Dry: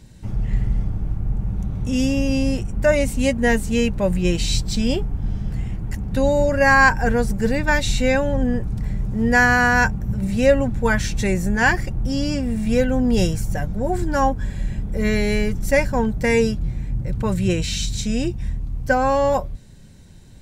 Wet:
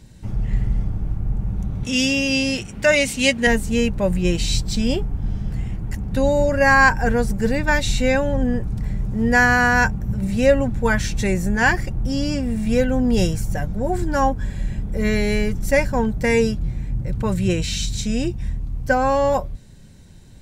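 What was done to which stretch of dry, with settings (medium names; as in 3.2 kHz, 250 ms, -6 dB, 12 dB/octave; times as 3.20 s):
1.83–3.47 s: frequency weighting D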